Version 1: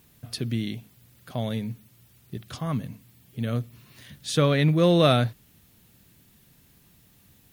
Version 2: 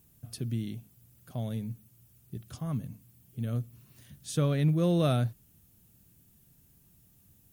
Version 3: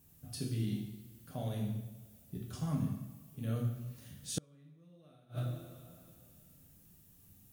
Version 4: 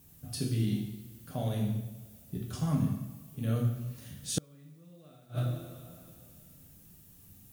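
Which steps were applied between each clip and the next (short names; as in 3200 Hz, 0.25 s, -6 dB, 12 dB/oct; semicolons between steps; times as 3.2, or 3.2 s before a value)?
graphic EQ 250/500/1000/2000/4000 Hz -3/-5/-6/-9/-9 dB; gain -2.5 dB
two-slope reverb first 0.8 s, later 2.4 s, from -18 dB, DRR -3 dB; flipped gate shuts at -18 dBFS, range -35 dB; gain -4.5 dB
added noise blue -77 dBFS; gain +5.5 dB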